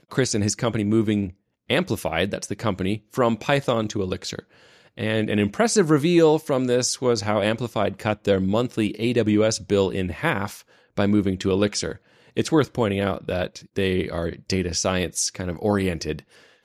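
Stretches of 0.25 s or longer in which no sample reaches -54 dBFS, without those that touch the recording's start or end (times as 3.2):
1.34–1.69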